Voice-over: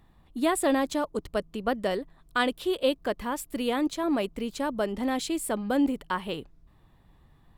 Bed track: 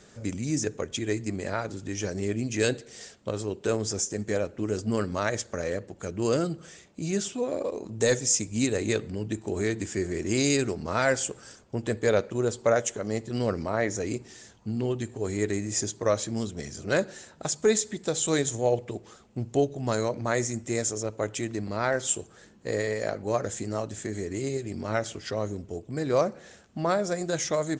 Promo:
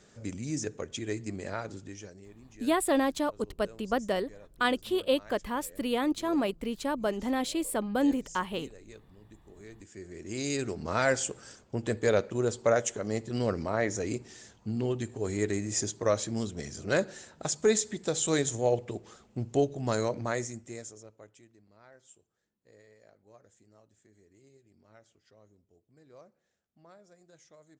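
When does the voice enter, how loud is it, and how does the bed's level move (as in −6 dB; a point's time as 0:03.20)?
2.25 s, −1.5 dB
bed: 0:01.77 −5.5 dB
0:02.32 −24 dB
0:09.50 −24 dB
0:10.88 −2 dB
0:20.18 −2 dB
0:21.58 −30 dB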